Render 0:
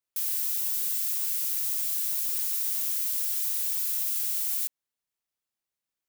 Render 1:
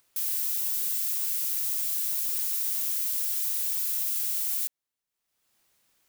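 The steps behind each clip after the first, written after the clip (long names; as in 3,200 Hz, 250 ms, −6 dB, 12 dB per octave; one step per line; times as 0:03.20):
upward compression, threshold −52 dBFS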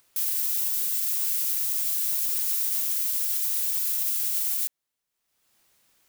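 brickwall limiter −20 dBFS, peak gain reduction 4 dB
level +4 dB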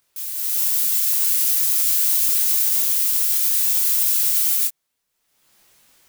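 automatic gain control gain up to 13 dB
micro pitch shift up and down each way 17 cents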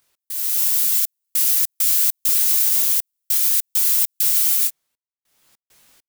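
gate pattern "x.xxxxx..xx.x" 100 BPM −60 dB
level +1.5 dB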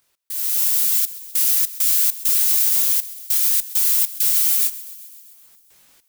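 feedback echo with a high-pass in the loop 131 ms, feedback 69%, high-pass 860 Hz, level −18 dB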